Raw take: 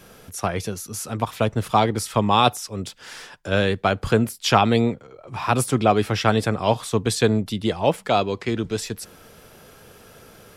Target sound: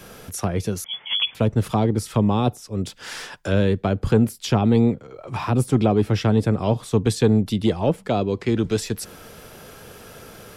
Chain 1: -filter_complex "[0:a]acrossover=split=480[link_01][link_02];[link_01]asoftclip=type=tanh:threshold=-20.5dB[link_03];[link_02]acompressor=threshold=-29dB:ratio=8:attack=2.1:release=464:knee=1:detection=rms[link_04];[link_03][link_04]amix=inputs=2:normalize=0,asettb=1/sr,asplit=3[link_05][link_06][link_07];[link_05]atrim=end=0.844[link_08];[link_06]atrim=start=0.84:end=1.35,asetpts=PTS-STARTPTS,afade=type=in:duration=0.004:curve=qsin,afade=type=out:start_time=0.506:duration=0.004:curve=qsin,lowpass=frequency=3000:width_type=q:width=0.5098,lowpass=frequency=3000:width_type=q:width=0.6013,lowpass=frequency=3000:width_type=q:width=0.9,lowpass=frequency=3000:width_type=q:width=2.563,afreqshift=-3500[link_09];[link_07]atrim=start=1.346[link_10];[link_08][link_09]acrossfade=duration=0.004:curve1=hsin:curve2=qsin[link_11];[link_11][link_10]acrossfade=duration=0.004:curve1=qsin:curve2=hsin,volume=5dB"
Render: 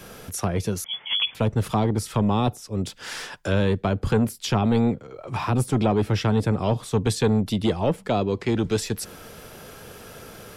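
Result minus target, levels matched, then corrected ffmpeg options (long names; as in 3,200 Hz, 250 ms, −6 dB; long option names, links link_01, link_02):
soft clipping: distortion +10 dB
-filter_complex "[0:a]acrossover=split=480[link_01][link_02];[link_01]asoftclip=type=tanh:threshold=-12dB[link_03];[link_02]acompressor=threshold=-29dB:ratio=8:attack=2.1:release=464:knee=1:detection=rms[link_04];[link_03][link_04]amix=inputs=2:normalize=0,asettb=1/sr,asplit=3[link_05][link_06][link_07];[link_05]atrim=end=0.844[link_08];[link_06]atrim=start=0.84:end=1.35,asetpts=PTS-STARTPTS,afade=type=in:duration=0.004:curve=qsin,afade=type=out:start_time=0.506:duration=0.004:curve=qsin,lowpass=frequency=3000:width_type=q:width=0.5098,lowpass=frequency=3000:width_type=q:width=0.6013,lowpass=frequency=3000:width_type=q:width=0.9,lowpass=frequency=3000:width_type=q:width=2.563,afreqshift=-3500[link_09];[link_07]atrim=start=1.346[link_10];[link_08][link_09]acrossfade=duration=0.004:curve1=hsin:curve2=qsin[link_11];[link_11][link_10]acrossfade=duration=0.004:curve1=qsin:curve2=hsin,volume=5dB"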